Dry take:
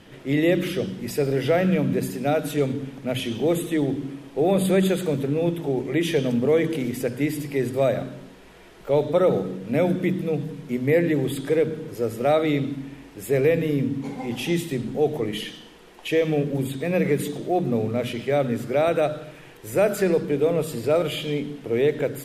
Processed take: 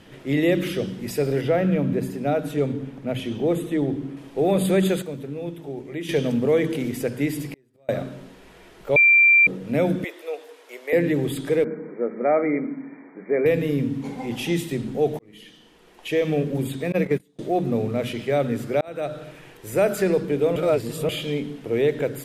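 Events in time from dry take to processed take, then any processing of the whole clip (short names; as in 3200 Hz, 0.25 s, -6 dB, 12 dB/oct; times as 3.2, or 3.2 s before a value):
1.41–4.17 high shelf 2300 Hz -8.5 dB
5.02–6.09 gain -8.5 dB
7.47–7.89 flipped gate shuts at -22 dBFS, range -37 dB
8.96–9.47 bleep 2360 Hz -11 dBFS
10.04–10.93 inverse Chebyshev high-pass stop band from 190 Hz, stop band 50 dB
11.64–13.46 brick-wall FIR band-pass 160–2400 Hz
15.19–16.3 fade in
16.92–17.39 gate -23 dBFS, range -32 dB
18.81–19.26 fade in
20.56–21.09 reverse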